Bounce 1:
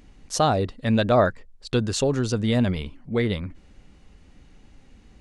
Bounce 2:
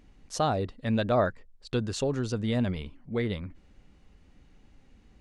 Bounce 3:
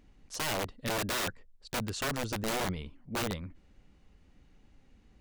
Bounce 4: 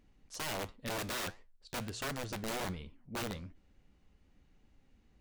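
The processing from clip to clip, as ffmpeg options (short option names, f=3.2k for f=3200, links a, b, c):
-af "highshelf=f=5.1k:g=-4.5,volume=-6dB"
-af "aeval=exprs='(mod(15*val(0)+1,2)-1)/15':c=same,volume=-3.5dB"
-af "flanger=delay=7.9:depth=9.9:regen=-80:speed=1.4:shape=triangular,volume=-1dB"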